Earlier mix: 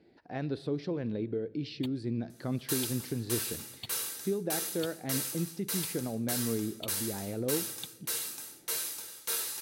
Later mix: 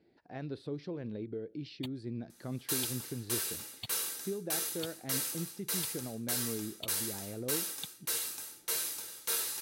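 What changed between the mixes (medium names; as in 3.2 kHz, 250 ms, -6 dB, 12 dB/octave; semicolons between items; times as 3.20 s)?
speech -5.0 dB; reverb: off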